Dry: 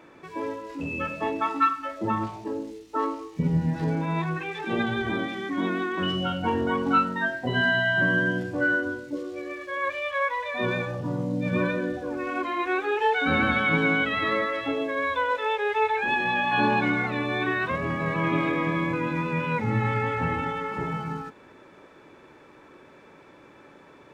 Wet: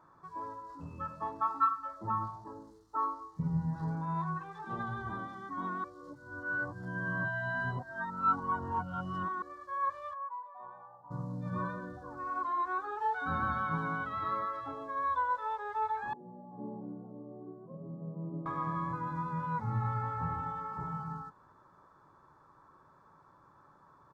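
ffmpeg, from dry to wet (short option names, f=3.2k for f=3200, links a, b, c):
-filter_complex "[0:a]asplit=3[a][b][c];[a]afade=t=out:st=10.13:d=0.02[d];[b]bandpass=f=820:t=q:w=5,afade=t=in:st=10.13:d=0.02,afade=t=out:st=11.1:d=0.02[e];[c]afade=t=in:st=11.1:d=0.02[f];[d][e][f]amix=inputs=3:normalize=0,asettb=1/sr,asplit=3[g][h][i];[g]atrim=end=16.134[j];[h]atrim=start=16.13:end=18.46,asetpts=PTS-STARTPTS,afade=t=in:d=0.004:c=qsin,afade=t=out:st=2.326:d=0.004:c=qsin,asuperpass=centerf=300:order=8:qfactor=0.71[k];[i]atrim=start=18.456[l];[j][k]acrossfade=d=0.004:c1=hsin:c2=qsin[m];[m][l]acrossfade=d=0.004:c1=qsin:c2=hsin,asplit=3[n][o][p];[n]atrim=end=5.842[q];[o]atrim=start=5.838:end=9.422,asetpts=PTS-STARTPTS,areverse[r];[p]atrim=start=9.418[s];[q][r]acrossfade=d=0.004:c1=hsin:c2=hsin[t];[t][s]acrossfade=d=0.004:c1=hsin:c2=hsin,firequalizer=gain_entry='entry(150,0);entry(240,-11);entry(470,-12);entry(1100,6);entry(2400,-27);entry(4300,-9)':delay=0.05:min_phase=1,volume=-6.5dB"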